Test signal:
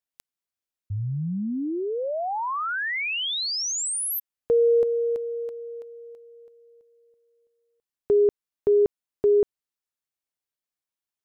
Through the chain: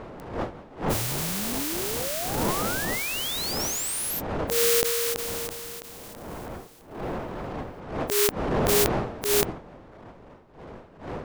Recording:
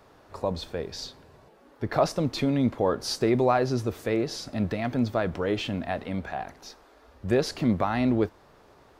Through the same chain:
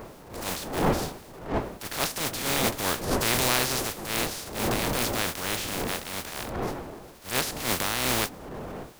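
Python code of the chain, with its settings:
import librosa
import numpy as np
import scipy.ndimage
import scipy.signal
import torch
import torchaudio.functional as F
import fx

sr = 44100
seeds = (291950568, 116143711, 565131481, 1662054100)

y = fx.spec_flatten(x, sr, power=0.24)
y = fx.dmg_wind(y, sr, seeds[0], corner_hz=620.0, level_db=-31.0)
y = fx.transient(y, sr, attack_db=-11, sustain_db=2)
y = y * 10.0 ** (-1.0 / 20.0)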